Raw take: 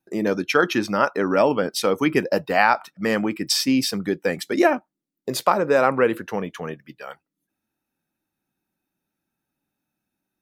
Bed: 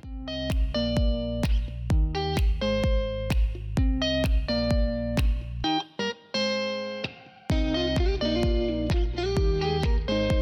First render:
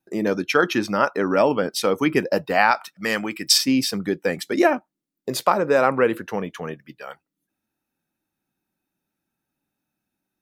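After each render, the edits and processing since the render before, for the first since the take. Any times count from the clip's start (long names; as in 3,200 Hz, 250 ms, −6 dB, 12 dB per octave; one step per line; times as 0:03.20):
0:02.71–0:03.58: tilt shelving filter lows −6 dB, about 1,200 Hz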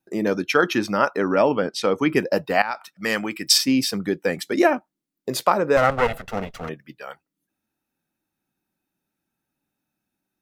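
0:01.31–0:02.09: high-frequency loss of the air 59 metres
0:02.62–0:03.07: fade in linear, from −15.5 dB
0:05.77–0:06.69: lower of the sound and its delayed copy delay 1.5 ms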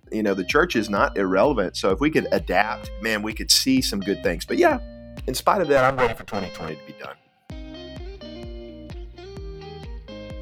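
mix in bed −12 dB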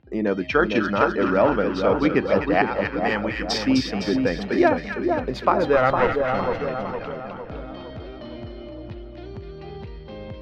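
high-frequency loss of the air 230 metres
echo with a time of its own for lows and highs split 1,300 Hz, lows 458 ms, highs 255 ms, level −4.5 dB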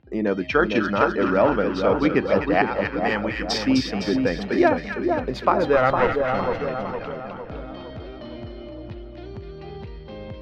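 no processing that can be heard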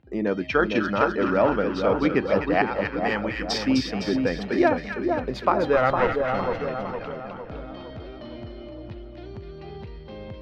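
level −2 dB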